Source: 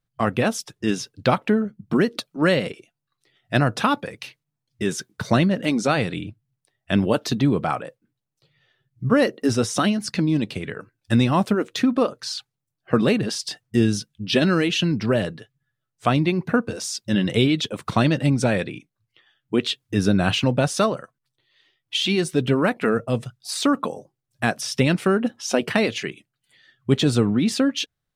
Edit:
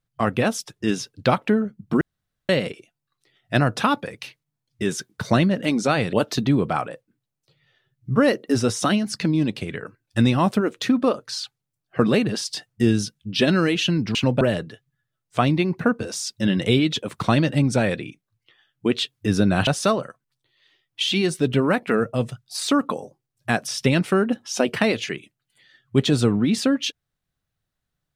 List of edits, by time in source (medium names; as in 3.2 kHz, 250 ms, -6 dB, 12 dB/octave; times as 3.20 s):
2.01–2.49 s: room tone
6.13–7.07 s: delete
20.35–20.61 s: move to 15.09 s